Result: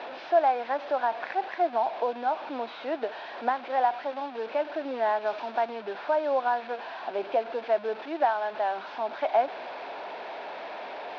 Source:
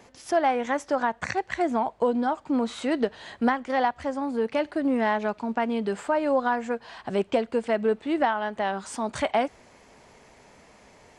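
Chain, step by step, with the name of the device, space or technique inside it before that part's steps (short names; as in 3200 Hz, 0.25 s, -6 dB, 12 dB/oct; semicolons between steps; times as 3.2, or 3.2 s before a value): digital answering machine (BPF 330–3300 Hz; delta modulation 32 kbps, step -29.5 dBFS; speaker cabinet 430–3200 Hz, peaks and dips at 460 Hz -4 dB, 690 Hz +4 dB, 1200 Hz -6 dB, 2000 Hz -9 dB, 3000 Hz -6 dB); 5.25–5.68 high shelf 5000 Hz -> 8200 Hz +10 dB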